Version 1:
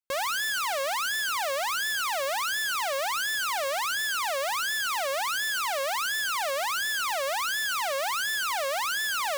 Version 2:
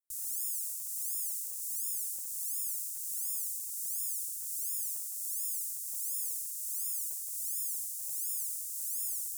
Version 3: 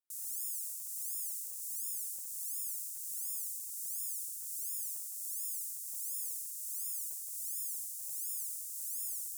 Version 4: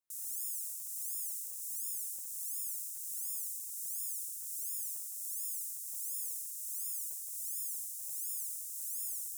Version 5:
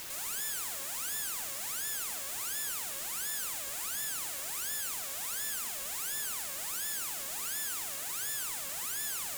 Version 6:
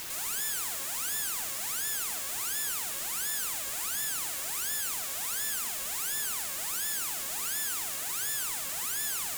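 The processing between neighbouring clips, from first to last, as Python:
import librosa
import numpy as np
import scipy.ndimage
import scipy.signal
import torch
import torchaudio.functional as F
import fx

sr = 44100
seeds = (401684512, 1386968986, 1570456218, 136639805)

y1 = scipy.signal.sosfilt(scipy.signal.cheby2(4, 60, [200.0, 2700.0], 'bandstop', fs=sr, output='sos'), x)
y1 = fx.low_shelf(y1, sr, hz=160.0, db=-11.0)
y1 = y1 * librosa.db_to_amplitude(3.0)
y2 = scipy.signal.sosfilt(scipy.signal.butter(4, 89.0, 'highpass', fs=sr, output='sos'), y1)
y2 = y2 * librosa.db_to_amplitude(-3.5)
y3 = fx.notch(y2, sr, hz=4600.0, q=13.0)
y4 = fx.peak_eq(y3, sr, hz=7000.0, db=5.5, octaves=0.36)
y4 = fx.tube_stage(y4, sr, drive_db=33.0, bias=0.6)
y4 = fx.quant_dither(y4, sr, seeds[0], bits=8, dither='triangular')
y4 = y4 * librosa.db_to_amplitude(5.5)
y5 = fx.notch(y4, sr, hz=570.0, q=12.0)
y5 = y5 * librosa.db_to_amplitude(3.5)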